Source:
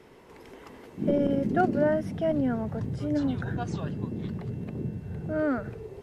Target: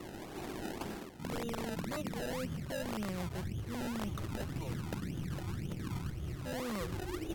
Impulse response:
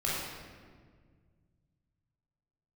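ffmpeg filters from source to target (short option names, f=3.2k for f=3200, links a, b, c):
-filter_complex "[0:a]asubboost=boost=3:cutoff=53,acrossover=split=130|1900[a][b][c];[b]alimiter=limit=-23dB:level=0:latency=1:release=53[d];[a][d][c]amix=inputs=3:normalize=0,aeval=exprs='(mod(12.6*val(0)+1,2)-1)/12.6':c=same,areverse,acompressor=threshold=-43dB:ratio=12,areverse,acrusher=samples=22:mix=1:aa=0.000001:lfo=1:lforange=22:lforate=2.3,asetrate=36162,aresample=44100,volume=7.5dB"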